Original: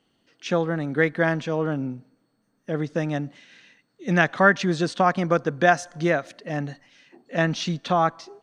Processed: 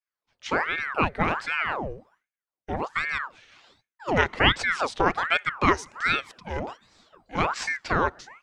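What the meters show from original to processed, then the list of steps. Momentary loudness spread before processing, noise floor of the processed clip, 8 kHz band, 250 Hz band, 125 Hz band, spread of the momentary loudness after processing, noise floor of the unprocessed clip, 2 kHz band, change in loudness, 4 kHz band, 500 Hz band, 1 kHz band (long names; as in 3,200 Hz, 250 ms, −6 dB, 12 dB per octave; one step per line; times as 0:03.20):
12 LU, below −85 dBFS, −2.0 dB, −7.0 dB, −7.0 dB, 13 LU, −70 dBFS, 0.0 dB, −2.0 dB, +4.5 dB, −6.5 dB, −1.0 dB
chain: downward expander −54 dBFS
ring modulator whose carrier an LFO sweeps 1,100 Hz, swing 80%, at 1.3 Hz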